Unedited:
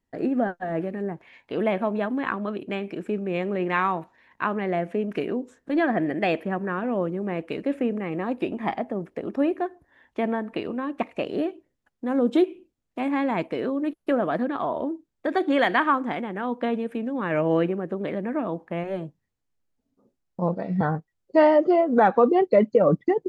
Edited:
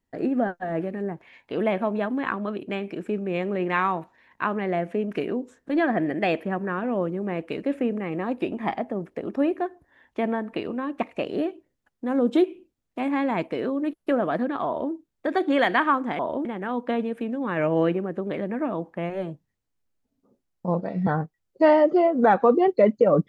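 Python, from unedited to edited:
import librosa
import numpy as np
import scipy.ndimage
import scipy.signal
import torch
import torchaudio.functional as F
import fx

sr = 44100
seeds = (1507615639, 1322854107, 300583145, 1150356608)

y = fx.edit(x, sr, fx.duplicate(start_s=14.66, length_s=0.26, to_s=16.19), tone=tone)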